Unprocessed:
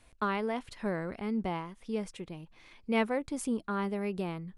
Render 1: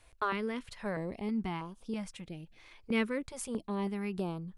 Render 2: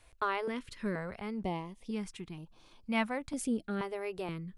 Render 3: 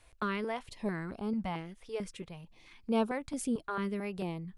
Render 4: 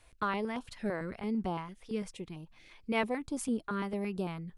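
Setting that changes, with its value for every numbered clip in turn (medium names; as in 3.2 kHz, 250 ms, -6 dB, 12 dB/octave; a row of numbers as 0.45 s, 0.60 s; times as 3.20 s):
step-sequenced notch, rate: 3.1 Hz, 2.1 Hz, 4.5 Hz, 8.9 Hz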